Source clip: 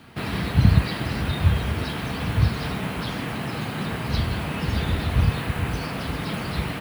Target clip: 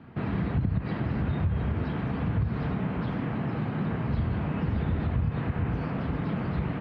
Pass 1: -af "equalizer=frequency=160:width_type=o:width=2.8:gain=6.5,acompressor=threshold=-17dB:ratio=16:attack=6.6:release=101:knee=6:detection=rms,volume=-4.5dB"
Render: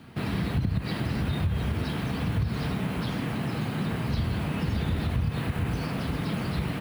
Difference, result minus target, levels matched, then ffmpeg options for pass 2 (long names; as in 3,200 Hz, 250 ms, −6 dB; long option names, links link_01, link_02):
2,000 Hz band +3.0 dB
-af "lowpass=1800,equalizer=frequency=160:width_type=o:width=2.8:gain=6.5,acompressor=threshold=-17dB:ratio=16:attack=6.6:release=101:knee=6:detection=rms,volume=-4.5dB"